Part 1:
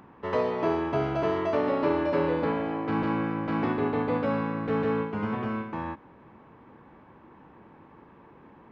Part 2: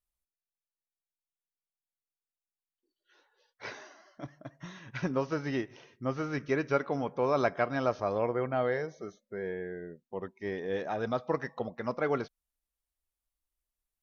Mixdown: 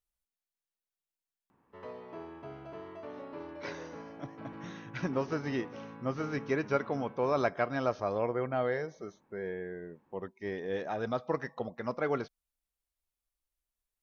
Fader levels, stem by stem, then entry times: -18.5 dB, -1.5 dB; 1.50 s, 0.00 s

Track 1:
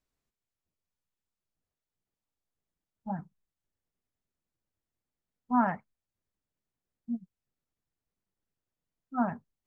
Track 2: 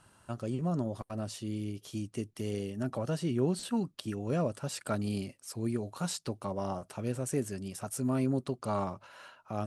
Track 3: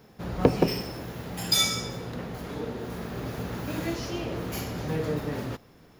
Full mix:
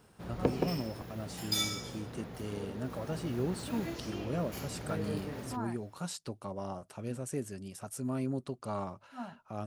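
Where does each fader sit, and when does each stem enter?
-14.0 dB, -4.5 dB, -9.0 dB; 0.00 s, 0.00 s, 0.00 s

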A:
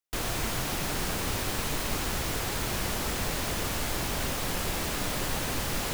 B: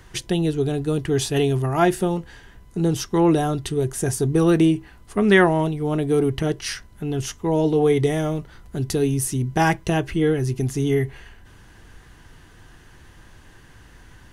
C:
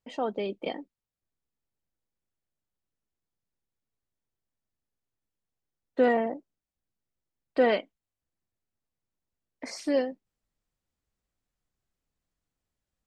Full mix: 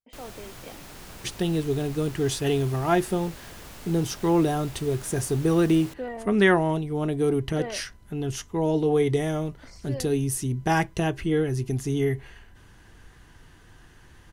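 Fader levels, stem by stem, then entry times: -13.0 dB, -4.0 dB, -11.5 dB; 0.00 s, 1.10 s, 0.00 s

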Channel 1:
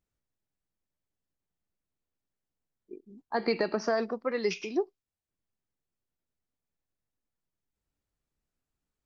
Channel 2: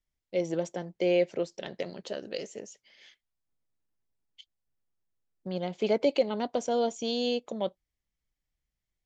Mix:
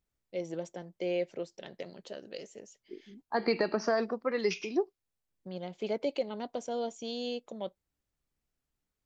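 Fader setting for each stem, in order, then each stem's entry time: -0.5 dB, -7.0 dB; 0.00 s, 0.00 s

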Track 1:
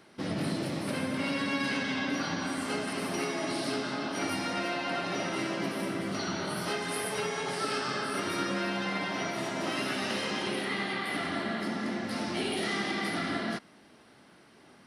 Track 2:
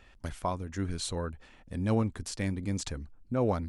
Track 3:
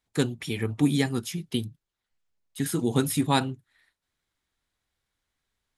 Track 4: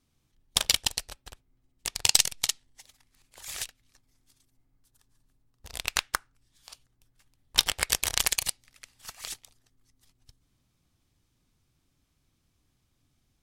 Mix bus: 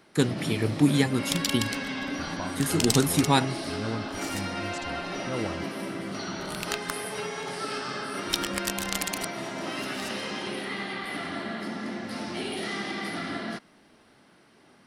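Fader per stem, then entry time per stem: -1.0 dB, -5.5 dB, +1.5 dB, -6.0 dB; 0.00 s, 1.95 s, 0.00 s, 0.75 s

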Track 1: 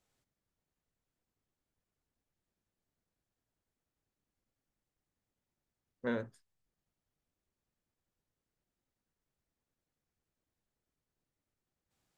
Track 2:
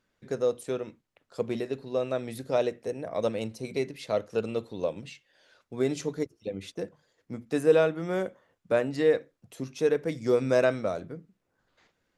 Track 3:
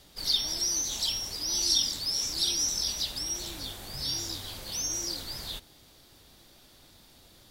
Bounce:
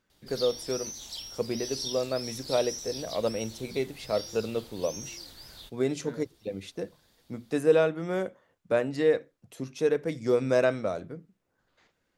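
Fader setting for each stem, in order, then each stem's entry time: -10.0 dB, -0.5 dB, -10.0 dB; 0.00 s, 0.00 s, 0.10 s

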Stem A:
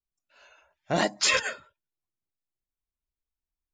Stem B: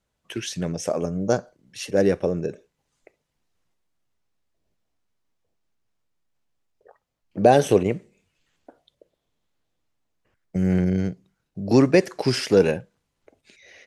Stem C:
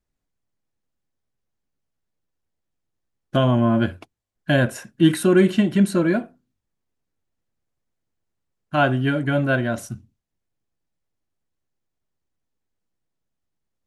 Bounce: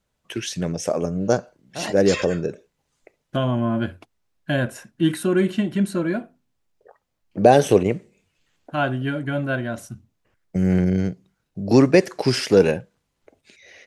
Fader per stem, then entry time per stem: -6.0 dB, +2.0 dB, -4.0 dB; 0.85 s, 0.00 s, 0.00 s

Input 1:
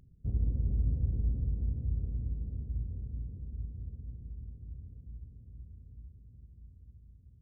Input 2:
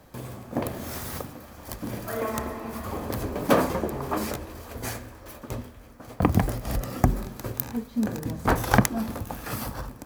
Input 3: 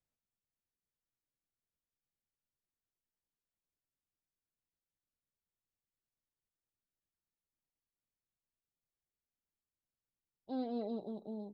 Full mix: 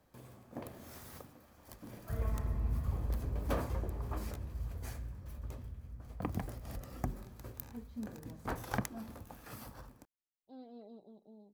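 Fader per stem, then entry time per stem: -5.0 dB, -16.5 dB, -13.5 dB; 1.85 s, 0.00 s, 0.00 s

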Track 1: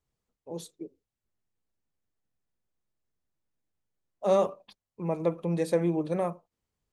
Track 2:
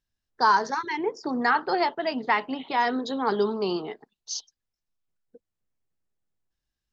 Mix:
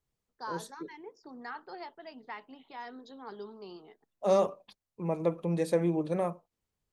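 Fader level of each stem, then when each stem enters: -1.5 dB, -19.5 dB; 0.00 s, 0.00 s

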